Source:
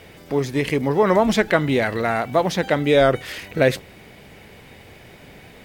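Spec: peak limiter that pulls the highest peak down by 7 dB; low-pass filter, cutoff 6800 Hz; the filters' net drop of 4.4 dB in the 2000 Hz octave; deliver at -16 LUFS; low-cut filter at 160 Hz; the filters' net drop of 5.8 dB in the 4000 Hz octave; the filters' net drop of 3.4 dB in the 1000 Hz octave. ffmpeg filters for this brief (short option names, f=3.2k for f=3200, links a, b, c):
-af "highpass=160,lowpass=6.8k,equalizer=f=1k:t=o:g=-4,equalizer=f=2k:t=o:g=-3,equalizer=f=4k:t=o:g=-5.5,volume=8dB,alimiter=limit=-3.5dB:level=0:latency=1"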